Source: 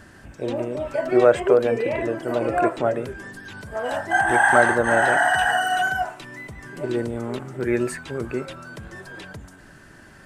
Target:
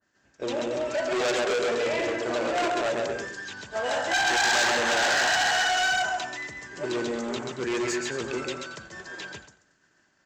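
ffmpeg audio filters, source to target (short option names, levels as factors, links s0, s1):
-filter_complex "[0:a]aecho=1:1:132|227|328:0.562|0.237|0.1,aresample=16000,volume=11.2,asoftclip=hard,volume=0.0891,aresample=44100,aemphasis=mode=production:type=bsi,agate=range=0.0224:threshold=0.02:ratio=3:detection=peak,asplit=2[s0][s1];[s1]asoftclip=type=tanh:threshold=0.0501,volume=0.631[s2];[s0][s2]amix=inputs=2:normalize=0,adynamicequalizer=threshold=0.02:dfrequency=2300:dqfactor=0.7:tfrequency=2300:tqfactor=0.7:attack=5:release=100:ratio=0.375:range=1.5:mode=boostabove:tftype=highshelf,volume=0.631"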